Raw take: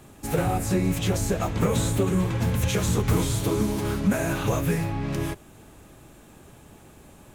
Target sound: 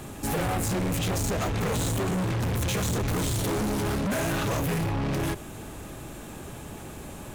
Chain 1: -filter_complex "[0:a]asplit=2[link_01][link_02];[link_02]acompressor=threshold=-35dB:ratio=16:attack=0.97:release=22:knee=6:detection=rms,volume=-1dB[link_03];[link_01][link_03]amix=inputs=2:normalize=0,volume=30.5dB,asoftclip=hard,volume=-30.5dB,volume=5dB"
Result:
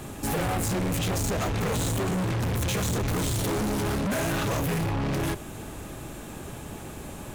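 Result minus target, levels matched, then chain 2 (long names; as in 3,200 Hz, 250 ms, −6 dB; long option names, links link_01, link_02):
downward compressor: peak gain reduction −10.5 dB
-filter_complex "[0:a]asplit=2[link_01][link_02];[link_02]acompressor=threshold=-46dB:ratio=16:attack=0.97:release=22:knee=6:detection=rms,volume=-1dB[link_03];[link_01][link_03]amix=inputs=2:normalize=0,volume=30.5dB,asoftclip=hard,volume=-30.5dB,volume=5dB"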